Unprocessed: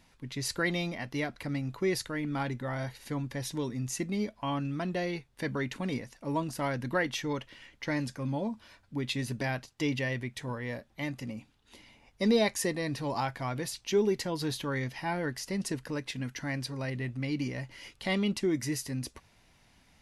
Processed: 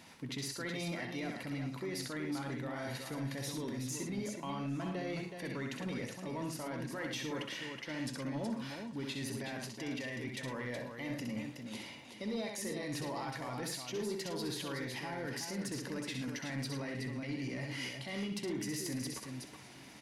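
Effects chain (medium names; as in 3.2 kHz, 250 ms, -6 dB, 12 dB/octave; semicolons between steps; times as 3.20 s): high-pass 150 Hz 12 dB/octave; reverse; compression 6:1, threshold -41 dBFS, peak gain reduction 18.5 dB; reverse; peak limiter -38.5 dBFS, peak gain reduction 12 dB; on a send: multi-tap echo 65/109/371 ms -5/-10.5/-6.5 dB; on the sum: saturation -37 dBFS, distortion -21 dB; modulated delay 431 ms, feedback 60%, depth 53 cents, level -19 dB; trim +7.5 dB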